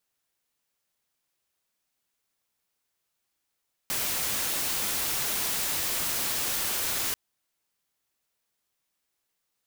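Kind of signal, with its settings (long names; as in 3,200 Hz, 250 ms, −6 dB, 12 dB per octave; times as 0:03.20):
noise white, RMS −29 dBFS 3.24 s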